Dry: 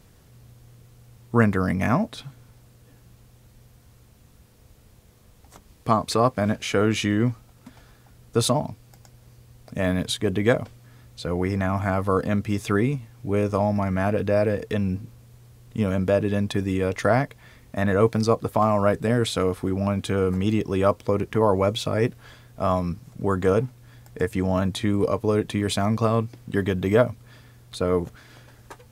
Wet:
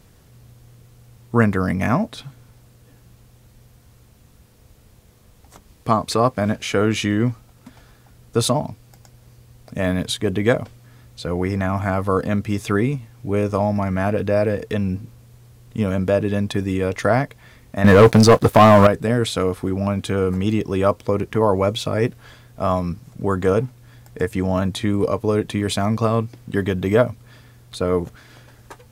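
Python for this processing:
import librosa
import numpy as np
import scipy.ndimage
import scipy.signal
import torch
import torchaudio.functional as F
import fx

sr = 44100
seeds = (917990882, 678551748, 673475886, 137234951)

y = fx.leveller(x, sr, passes=3, at=(17.84, 18.87))
y = F.gain(torch.from_numpy(y), 2.5).numpy()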